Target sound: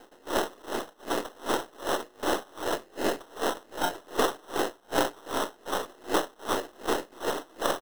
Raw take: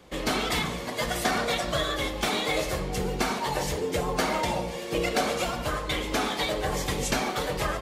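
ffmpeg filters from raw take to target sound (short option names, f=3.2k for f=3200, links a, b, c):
-af "equalizer=f=150:w=0.3:g=5.5,aresample=11025,aeval=exprs='abs(val(0))':c=same,aresample=44100,acrusher=samples=19:mix=1:aa=0.000001,lowshelf=f=220:t=q:w=1.5:g=-13.5,aeval=exprs='val(0)*pow(10,-31*(0.5-0.5*cos(2*PI*2.6*n/s))/20)':c=same,volume=5dB"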